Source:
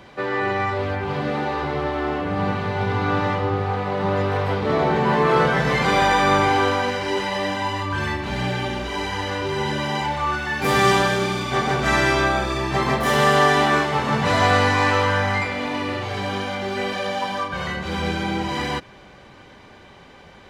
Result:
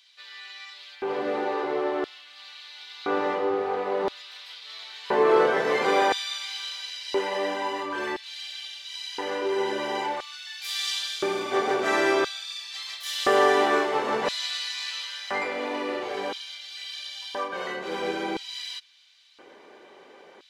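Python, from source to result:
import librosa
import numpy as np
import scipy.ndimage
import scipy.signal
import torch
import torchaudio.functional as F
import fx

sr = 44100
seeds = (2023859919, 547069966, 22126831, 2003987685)

y = fx.hum_notches(x, sr, base_hz=50, count=3)
y = fx.filter_lfo_highpass(y, sr, shape='square', hz=0.49, low_hz=390.0, high_hz=3800.0, q=2.3)
y = y * 10.0 ** (-6.0 / 20.0)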